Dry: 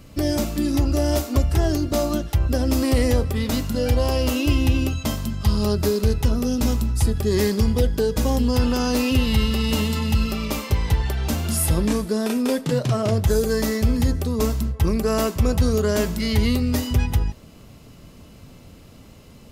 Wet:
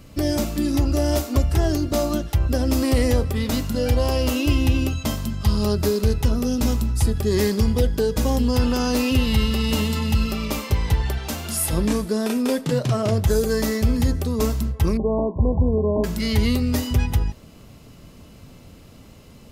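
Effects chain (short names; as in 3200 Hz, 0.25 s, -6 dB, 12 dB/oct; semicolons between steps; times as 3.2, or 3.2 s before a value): 11.18–11.73 low shelf 320 Hz -9 dB; 14.97–16.04 brick-wall FIR low-pass 1100 Hz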